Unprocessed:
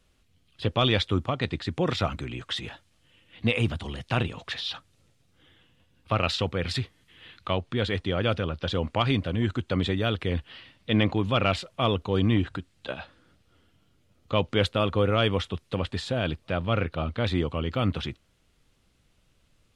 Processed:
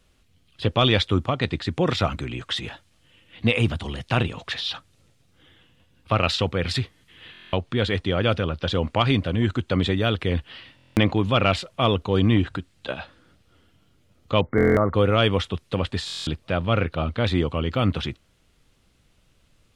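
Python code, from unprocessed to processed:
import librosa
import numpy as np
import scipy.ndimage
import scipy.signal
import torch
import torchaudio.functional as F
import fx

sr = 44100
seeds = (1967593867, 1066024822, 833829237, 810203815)

y = fx.brickwall_lowpass(x, sr, high_hz=2200.0, at=(14.41, 14.94))
y = fx.buffer_glitch(y, sr, at_s=(7.32, 10.76, 14.56, 16.06), block=1024, repeats=8)
y = y * 10.0 ** (4.0 / 20.0)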